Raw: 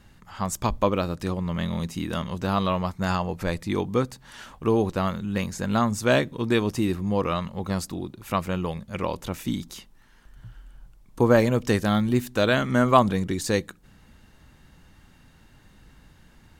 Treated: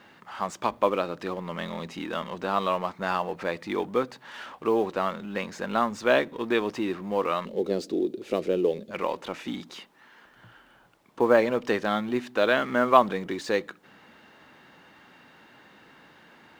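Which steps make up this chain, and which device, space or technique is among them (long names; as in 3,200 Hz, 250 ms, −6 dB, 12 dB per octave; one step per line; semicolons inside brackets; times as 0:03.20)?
phone line with mismatched companding (band-pass filter 350–3,200 Hz; mu-law and A-law mismatch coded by mu)
0:07.45–0:08.91: drawn EQ curve 160 Hz 0 dB, 420 Hz +13 dB, 1,000 Hz −15 dB, 4,000 Hz +1 dB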